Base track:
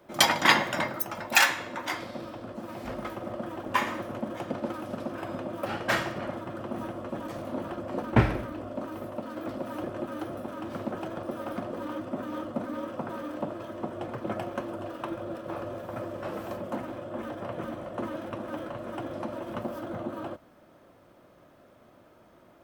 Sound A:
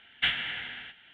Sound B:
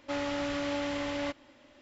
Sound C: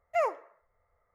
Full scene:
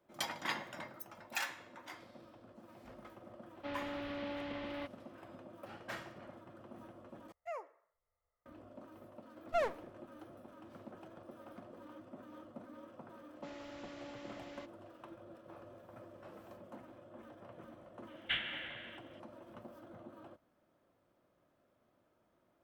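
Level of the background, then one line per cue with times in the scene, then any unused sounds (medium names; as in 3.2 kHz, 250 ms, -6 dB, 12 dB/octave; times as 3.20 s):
base track -18 dB
3.55 s: add B -9.5 dB + low-pass 4 kHz 24 dB/octave
7.32 s: replace with C -16 dB
9.39 s: add C -5 dB + sliding maximum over 17 samples
13.34 s: add B -17.5 dB
18.07 s: add A -9 dB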